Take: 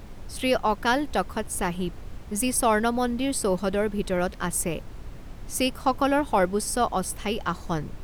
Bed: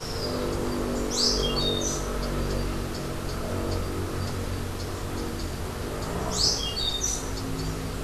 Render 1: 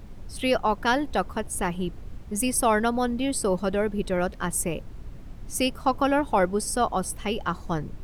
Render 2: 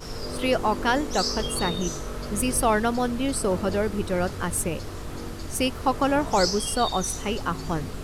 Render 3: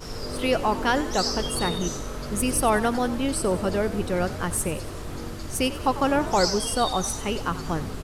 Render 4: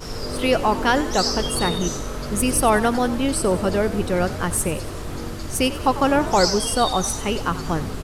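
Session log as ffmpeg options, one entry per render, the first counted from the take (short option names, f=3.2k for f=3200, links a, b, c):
-af "afftdn=nr=6:nf=-41"
-filter_complex "[1:a]volume=-4.5dB[a];[0:a][a]amix=inputs=2:normalize=0"
-filter_complex "[0:a]asplit=7[a][b][c][d][e][f][g];[b]adelay=94,afreqshift=46,volume=-15dB[h];[c]adelay=188,afreqshift=92,volume=-19.9dB[i];[d]adelay=282,afreqshift=138,volume=-24.8dB[j];[e]adelay=376,afreqshift=184,volume=-29.6dB[k];[f]adelay=470,afreqshift=230,volume=-34.5dB[l];[g]adelay=564,afreqshift=276,volume=-39.4dB[m];[a][h][i][j][k][l][m]amix=inputs=7:normalize=0"
-af "volume=4dB"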